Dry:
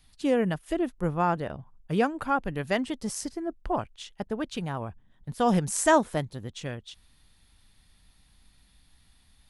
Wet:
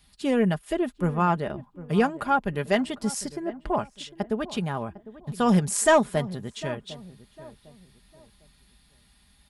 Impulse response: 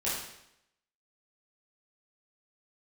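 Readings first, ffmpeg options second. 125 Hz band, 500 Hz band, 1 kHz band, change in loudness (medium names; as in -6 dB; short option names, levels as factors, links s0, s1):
+3.5 dB, +2.5 dB, +1.5 dB, +2.5 dB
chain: -filter_complex "[0:a]highpass=41,bandreject=f=6100:w=18,aecho=1:1:4.9:0.45,asoftclip=type=tanh:threshold=0.282,asplit=2[s0][s1];[s1]adelay=753,lowpass=f=1100:p=1,volume=0.158,asplit=2[s2][s3];[s3]adelay=753,lowpass=f=1100:p=1,volume=0.35,asplit=2[s4][s5];[s5]adelay=753,lowpass=f=1100:p=1,volume=0.35[s6];[s2][s4][s6]amix=inputs=3:normalize=0[s7];[s0][s7]amix=inputs=2:normalize=0,volume=1.33"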